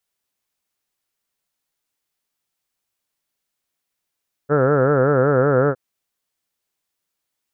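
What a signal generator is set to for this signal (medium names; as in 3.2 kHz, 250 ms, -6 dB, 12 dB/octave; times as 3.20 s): formant-synthesis vowel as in heard, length 1.26 s, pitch 139 Hz, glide -0.5 st, vibrato depth 1.35 st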